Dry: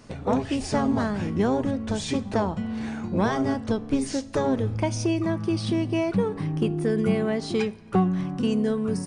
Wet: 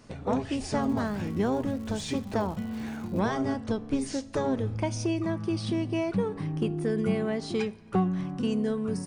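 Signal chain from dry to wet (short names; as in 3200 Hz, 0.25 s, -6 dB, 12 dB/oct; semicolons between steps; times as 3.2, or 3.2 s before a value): 0.8–3.19 crackle 280/s -37 dBFS; gain -4 dB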